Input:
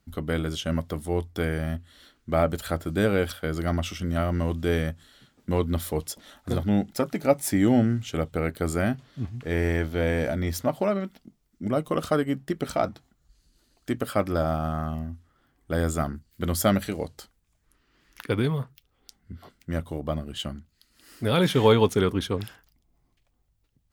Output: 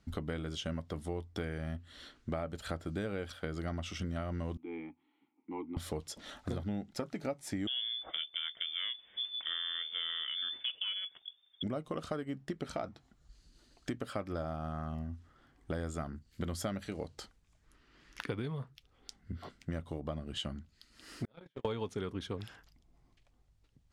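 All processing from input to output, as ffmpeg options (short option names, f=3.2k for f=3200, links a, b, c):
-filter_complex "[0:a]asettb=1/sr,asplit=3[a][b][c];[a]atrim=end=4.574[d];[b]atrim=start=4.57:end=5.77,asetpts=PTS-STARTPTS,afade=t=in:d=0.004:c=qsin,afade=t=out:st=1.196:d=0.004:c=qsin,asplit=3[e][f][g];[e]bandpass=f=300:t=q:w=8,volume=0dB[h];[f]bandpass=f=870:t=q:w=8,volume=-6dB[i];[g]bandpass=f=2.24k:t=q:w=8,volume=-9dB[j];[h][i][j]amix=inputs=3:normalize=0,acrossover=split=280 2900:gain=0.251 1 0.0708[k][l][m];[k][l][m]amix=inputs=3:normalize=0[n];[c]atrim=start=5.766[o];[d][n]acrossfade=d=0.004:c1=hsin:c2=qsin[p];[p][o]acrossfade=d=0.004:c1=qsin:c2=hsin,asettb=1/sr,asplit=3[q][r][s];[q]atrim=end=7.674[t];[r]atrim=start=7.67:end=11.63,asetpts=PTS-STARTPTS,afade=t=in:d=0.004:c=qsin,afade=t=out:st=3.956:d=0.004:c=qsin,bandreject=f=1.2k:w=9.4,lowpass=f=3.1k:t=q:w=0.5098,lowpass=f=3.1k:t=q:w=0.6013,lowpass=f=3.1k:t=q:w=0.9,lowpass=f=3.1k:t=q:w=2.563,afreqshift=-3600[u];[s]atrim=start=11.626[v];[t][u]acrossfade=d=0.004:c1=hsin:c2=qsin[w];[w][v]acrossfade=d=0.004:c1=qsin:c2=hsin,asettb=1/sr,asplit=3[x][y][z];[x]atrim=end=21.254[aa];[y]atrim=start=21.25:end=21.65,asetpts=PTS-STARTPTS,afade=t=in:d=0.004:c=qsin,afade=t=out:st=0.396:d=0.004:c=qsin,asplit=2[ab][ac];[ac]adelay=24,volume=-6dB[ad];[ab][ad]amix=inputs=2:normalize=0,atrim=end_sample=17640,acrossover=split=170|2900[ae][af][ag];[ae]acompressor=threshold=-35dB:ratio=4[ah];[af]acompressor=threshold=-23dB:ratio=4[ai];[ag]acompressor=threshold=-44dB:ratio=4[aj];[ah][ai][aj]amix=inputs=3:normalize=0,agate=range=-50dB:threshold=-21dB:ratio=16:release=100:detection=peak[ak];[z]atrim=start=21.646[al];[aa][ak]acrossfade=d=0.004:c1=hsin:c2=qsin[am];[am][al]acrossfade=d=0.004:c1=qsin:c2=hsin,lowpass=7.4k,acompressor=threshold=-37dB:ratio=6,volume=1.5dB"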